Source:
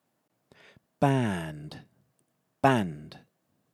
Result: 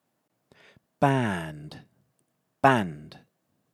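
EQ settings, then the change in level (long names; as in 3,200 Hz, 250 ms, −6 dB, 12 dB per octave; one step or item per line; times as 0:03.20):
dynamic equaliser 1,300 Hz, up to +6 dB, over −39 dBFS, Q 0.76
0.0 dB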